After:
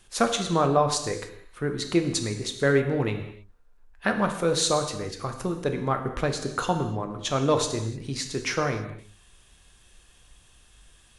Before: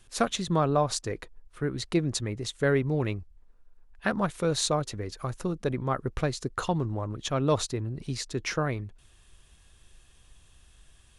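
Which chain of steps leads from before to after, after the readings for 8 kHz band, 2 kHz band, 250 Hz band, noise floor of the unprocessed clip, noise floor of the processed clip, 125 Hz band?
+4.5 dB, +4.0 dB, +2.5 dB, -59 dBFS, -57 dBFS, 0.0 dB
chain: low shelf 200 Hz -5.5 dB; non-linear reverb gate 0.33 s falling, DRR 5 dB; gain +3 dB

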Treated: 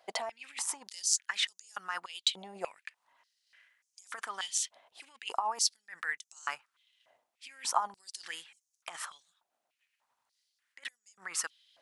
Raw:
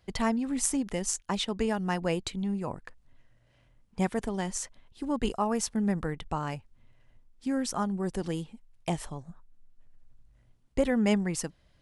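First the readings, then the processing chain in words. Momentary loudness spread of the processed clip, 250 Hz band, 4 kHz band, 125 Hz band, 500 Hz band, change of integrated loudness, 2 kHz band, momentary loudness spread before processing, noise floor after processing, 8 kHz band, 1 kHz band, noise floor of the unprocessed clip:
17 LU, -31.5 dB, +4.5 dB, under -30 dB, -15.0 dB, -4.0 dB, +0.5 dB, 11 LU, -85 dBFS, +1.0 dB, -2.0 dB, -65 dBFS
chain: negative-ratio compressor -31 dBFS, ratio -0.5; stepped high-pass 3.4 Hz 680–6300 Hz; gain -1.5 dB

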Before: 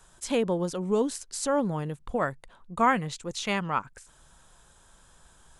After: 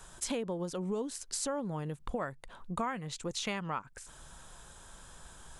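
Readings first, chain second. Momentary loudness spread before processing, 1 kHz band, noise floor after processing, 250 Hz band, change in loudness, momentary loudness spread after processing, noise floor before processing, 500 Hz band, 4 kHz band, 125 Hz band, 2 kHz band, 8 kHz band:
9 LU, -10.5 dB, -56 dBFS, -8.0 dB, -8.0 dB, 17 LU, -58 dBFS, -9.0 dB, -3.5 dB, -6.0 dB, -10.0 dB, -2.0 dB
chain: compressor 5:1, threshold -39 dBFS, peak gain reduction 19.5 dB; gain +5 dB

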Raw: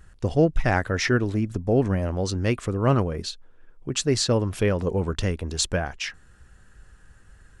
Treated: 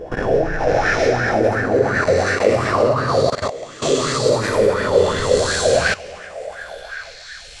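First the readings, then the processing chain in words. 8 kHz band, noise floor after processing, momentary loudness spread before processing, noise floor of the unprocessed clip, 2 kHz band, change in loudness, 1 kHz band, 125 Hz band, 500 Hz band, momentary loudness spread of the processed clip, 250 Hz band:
+4.5 dB, -38 dBFS, 9 LU, -53 dBFS, +11.0 dB, +7.0 dB, +11.0 dB, -1.0 dB, +10.5 dB, 15 LU, +1.0 dB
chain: spectral swells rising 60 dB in 2.17 s; delay with a stepping band-pass 0.554 s, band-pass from 590 Hz, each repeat 1.4 oct, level -2 dB; plate-style reverb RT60 2 s, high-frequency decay 0.8×, DRR -4.5 dB; level quantiser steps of 17 dB; LFO bell 2.8 Hz 470–1700 Hz +16 dB; gain -5.5 dB

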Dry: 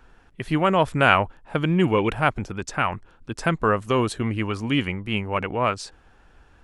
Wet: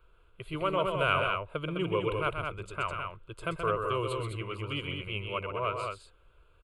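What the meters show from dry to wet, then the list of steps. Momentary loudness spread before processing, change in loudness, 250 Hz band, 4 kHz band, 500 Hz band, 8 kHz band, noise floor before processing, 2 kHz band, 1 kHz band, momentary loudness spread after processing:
12 LU, -9.0 dB, -14.5 dB, -6.5 dB, -7.5 dB, -14.0 dB, -55 dBFS, -9.5 dB, -8.5 dB, 10 LU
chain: fixed phaser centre 1200 Hz, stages 8; loudspeakers at several distances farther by 44 m -6 dB, 71 m -5 dB; gain -8 dB

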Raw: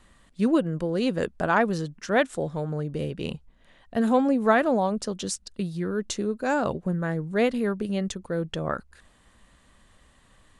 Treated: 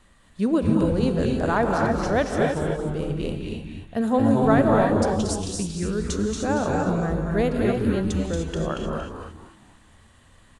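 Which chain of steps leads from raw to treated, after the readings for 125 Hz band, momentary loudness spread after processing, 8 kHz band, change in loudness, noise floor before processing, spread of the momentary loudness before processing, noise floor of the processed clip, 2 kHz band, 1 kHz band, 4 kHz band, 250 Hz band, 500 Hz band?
+6.0 dB, 11 LU, +3.0 dB, +3.0 dB, -60 dBFS, 10 LU, -54 dBFS, -0.5 dB, +2.0 dB, +1.0 dB, +4.0 dB, +3.0 dB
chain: dynamic EQ 2400 Hz, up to -6 dB, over -42 dBFS, Q 0.96; on a send: frequency-shifting echo 0.231 s, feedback 33%, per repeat -120 Hz, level -5 dB; on the sum: non-linear reverb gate 0.33 s rising, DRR 1.5 dB

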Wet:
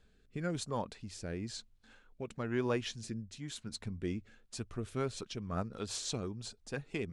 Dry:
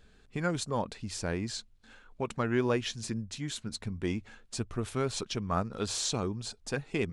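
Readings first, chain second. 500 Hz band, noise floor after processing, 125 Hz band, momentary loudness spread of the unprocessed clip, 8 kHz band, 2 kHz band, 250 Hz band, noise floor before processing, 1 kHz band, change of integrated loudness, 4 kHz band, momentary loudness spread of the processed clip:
-5.5 dB, -67 dBFS, -5.0 dB, 8 LU, -7.0 dB, -6.5 dB, -5.5 dB, -61 dBFS, -7.5 dB, -5.5 dB, -6.5 dB, 10 LU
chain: rotary speaker horn 1 Hz, later 6 Hz, at 4.49; gain -4 dB

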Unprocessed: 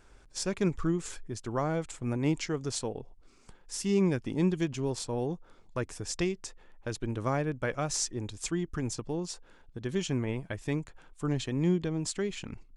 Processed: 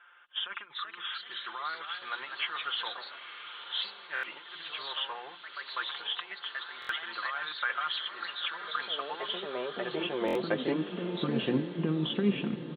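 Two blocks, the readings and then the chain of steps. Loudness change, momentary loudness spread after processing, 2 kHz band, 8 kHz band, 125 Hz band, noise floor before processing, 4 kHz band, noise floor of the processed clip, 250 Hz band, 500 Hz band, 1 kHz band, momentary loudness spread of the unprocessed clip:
-1.5 dB, 9 LU, +7.0 dB, under -30 dB, -8.5 dB, -58 dBFS, +8.5 dB, -50 dBFS, -4.0 dB, -3.5 dB, +3.5 dB, 12 LU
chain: nonlinear frequency compression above 2600 Hz 4:1; low-pass opened by the level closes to 2700 Hz; comb 5.7 ms, depth 58%; dynamic EQ 1100 Hz, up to +6 dB, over -48 dBFS, Q 1.5; in parallel at -1 dB: limiter -21.5 dBFS, peak gain reduction 9.5 dB; on the sum: negative-ratio compressor -25 dBFS, ratio -0.5; high-pass sweep 1400 Hz -> 220 Hz, 8.94–11.15; air absorption 300 m; notches 60/120/180/240/300/360 Hz; echoes that change speed 0.431 s, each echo +2 st, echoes 2, each echo -6 dB; on a send: diffused feedback echo 0.925 s, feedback 50%, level -10 dB; on the sum: stuck buffer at 4.14/6.8/10.26, samples 1024, times 3; gain -4 dB

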